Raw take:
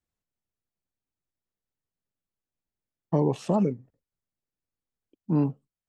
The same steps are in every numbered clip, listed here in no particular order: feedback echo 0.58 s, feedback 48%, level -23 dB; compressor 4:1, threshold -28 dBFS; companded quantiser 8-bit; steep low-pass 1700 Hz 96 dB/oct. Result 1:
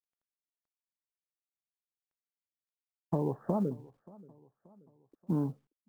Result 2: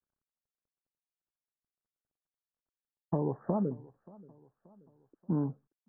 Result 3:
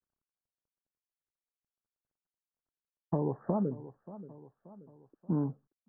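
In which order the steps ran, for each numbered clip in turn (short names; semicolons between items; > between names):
steep low-pass > compressor > companded quantiser > feedback echo; compressor > feedback echo > companded quantiser > steep low-pass; feedback echo > companded quantiser > steep low-pass > compressor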